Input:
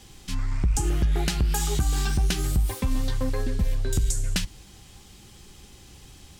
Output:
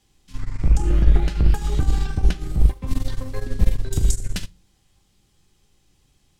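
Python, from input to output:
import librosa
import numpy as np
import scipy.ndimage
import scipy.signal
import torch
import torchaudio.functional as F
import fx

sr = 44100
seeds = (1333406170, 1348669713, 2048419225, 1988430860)

y = fx.octave_divider(x, sr, octaves=2, level_db=-2.0)
y = fx.lowpass(y, sr, hz=2300.0, slope=6, at=(0.7, 2.87))
y = fx.room_early_taps(y, sr, ms=(38, 74), db=(-15.5, -14.0))
y = fx.room_shoebox(y, sr, seeds[0], volume_m3=120.0, walls='furnished', distance_m=0.45)
y = fx.upward_expand(y, sr, threshold_db=-28.0, expansion=2.5)
y = y * librosa.db_to_amplitude(7.0)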